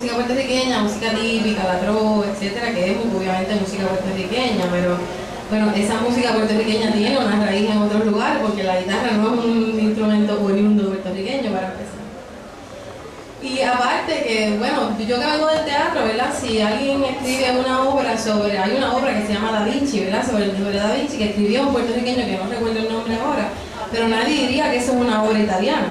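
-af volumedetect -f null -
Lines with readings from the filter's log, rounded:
mean_volume: -19.2 dB
max_volume: -5.9 dB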